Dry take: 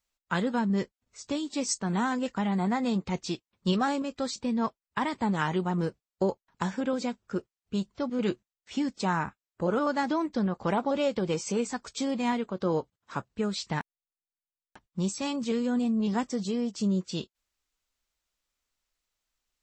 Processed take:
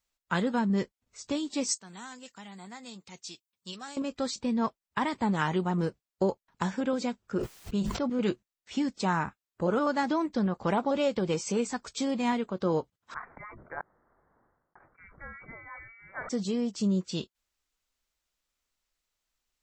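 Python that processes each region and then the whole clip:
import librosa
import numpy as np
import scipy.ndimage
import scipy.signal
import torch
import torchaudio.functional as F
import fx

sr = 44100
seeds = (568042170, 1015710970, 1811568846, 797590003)

y = fx.chain(x, sr, fx.highpass(hz=86.0, slope=12),
    fx.pre_emphasis(coefficient=0.9), at=(1.75, 3.97))
y = fx.chain(y, sr, fx.dynamic_eq(hz=5000.0, q=0.75, threshold_db=-55.0, ratio=4.0, max_db=-4),
    fx.sustainer(db_per_s=34.0), at=(7.2, 8.21))
y = fx.chain(y, sr, fx.highpass(hz=1300.0, slope=12),
    fx.freq_invert(carrier_hz=2500),
    fx.sustainer(db_per_s=51.0), at=(13.14, 16.29))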